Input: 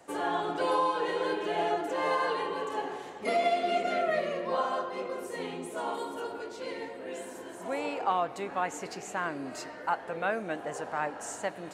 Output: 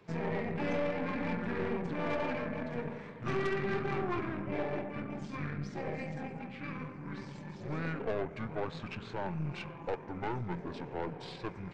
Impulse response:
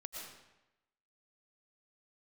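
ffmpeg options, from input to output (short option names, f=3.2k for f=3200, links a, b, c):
-af "equalizer=f=250:t=o:w=1:g=9,equalizer=f=500:t=o:w=1:g=-5,equalizer=f=4k:t=o:w=1:g=11,equalizer=f=8k:t=o:w=1:g=-9,aeval=exprs='(tanh(25.1*val(0)+0.65)-tanh(0.65))/25.1':c=same,asetrate=24750,aresample=44100,atempo=1.7818"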